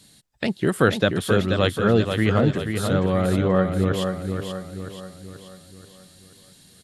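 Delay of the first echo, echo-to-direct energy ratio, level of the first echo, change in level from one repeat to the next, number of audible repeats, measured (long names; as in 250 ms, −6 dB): 482 ms, −5.0 dB, −6.0 dB, −6.5 dB, 5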